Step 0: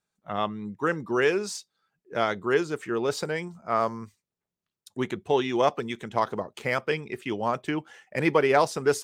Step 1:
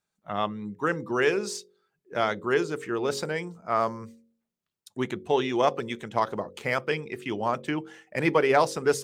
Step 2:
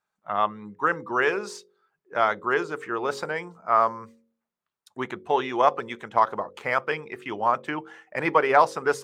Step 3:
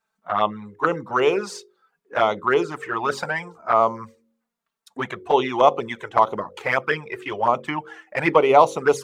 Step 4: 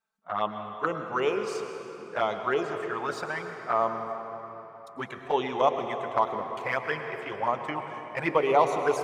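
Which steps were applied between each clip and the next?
hum removal 45.94 Hz, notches 12
parametric band 1,100 Hz +14 dB 2.2 octaves; level −7 dB
flanger swept by the level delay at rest 4.5 ms, full sweep at −19 dBFS; level +7.5 dB
convolution reverb RT60 3.9 s, pre-delay 101 ms, DRR 6 dB; level −8 dB

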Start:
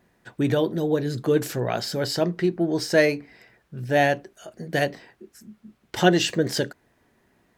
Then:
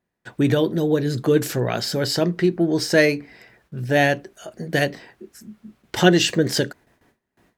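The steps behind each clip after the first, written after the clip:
dynamic equaliser 770 Hz, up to −5 dB, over −31 dBFS, Q 1.2
noise gate with hold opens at −53 dBFS
level +4.5 dB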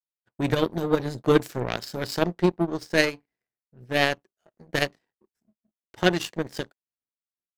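power curve on the samples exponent 2
automatic gain control gain up to 11 dB
one half of a high-frequency compander decoder only
level −1 dB

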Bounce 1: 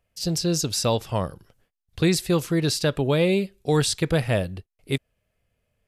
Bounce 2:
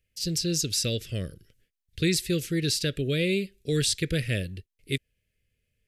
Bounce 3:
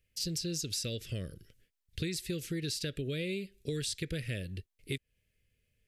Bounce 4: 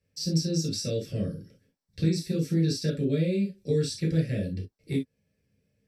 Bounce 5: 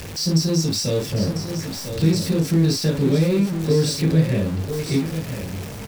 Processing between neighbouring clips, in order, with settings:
Chebyshev band-stop filter 410–2,000 Hz, order 2; parametric band 260 Hz −5 dB 2.4 octaves
downward compressor 6 to 1, threshold −33 dBFS, peak gain reduction 13 dB
convolution reverb, pre-delay 3 ms, DRR −6.5 dB; level −8 dB
converter with a step at zero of −33.5 dBFS; single-tap delay 997 ms −9 dB; level +6 dB

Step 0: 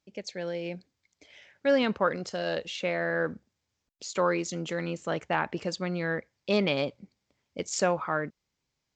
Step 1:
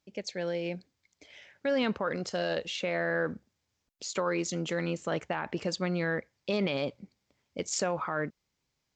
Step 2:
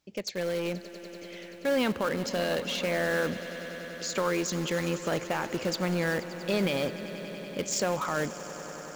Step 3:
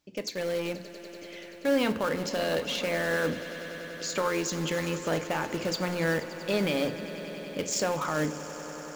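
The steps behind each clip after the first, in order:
brickwall limiter −21.5 dBFS, peak gain reduction 9 dB; level +1 dB
in parallel at −10.5 dB: wrap-around overflow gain 29.5 dB; on the sum: echo that builds up and dies away 96 ms, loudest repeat 5, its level −18 dB; level +1.5 dB
feedback delay network reverb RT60 0.44 s, low-frequency decay 1.4×, high-frequency decay 0.8×, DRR 9 dB

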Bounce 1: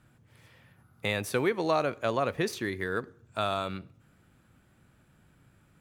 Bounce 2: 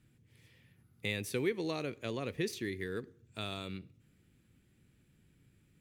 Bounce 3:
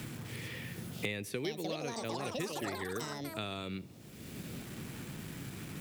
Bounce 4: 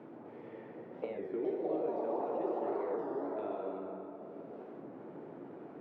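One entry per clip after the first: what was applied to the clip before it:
flat-topped bell 940 Hz −11.5 dB; level −4.5 dB
delay with pitch and tempo change per echo 748 ms, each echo +7 semitones, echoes 3; bit reduction 12 bits; multiband upward and downward compressor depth 100%; level −2 dB
flat-topped band-pass 540 Hz, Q 0.96; dense smooth reverb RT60 3.6 s, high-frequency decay 0.5×, DRR −2 dB; wow of a warped record 33 1/3 rpm, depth 160 cents; level +1 dB

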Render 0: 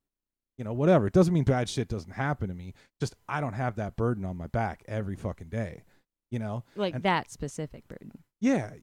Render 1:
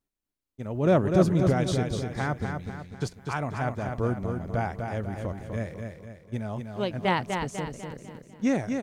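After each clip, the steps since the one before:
repeating echo 248 ms, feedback 45%, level −5.5 dB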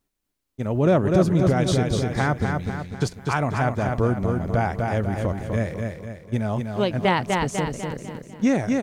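downward compressor 2 to 1, threshold −27 dBFS, peak gain reduction 7.5 dB
level +8.5 dB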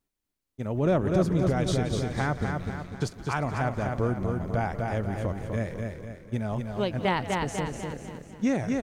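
echo with shifted repeats 176 ms, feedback 53%, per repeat −96 Hz, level −15.5 dB
level −5.5 dB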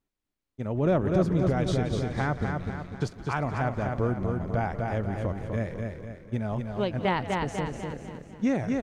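low-pass filter 3,800 Hz 6 dB per octave

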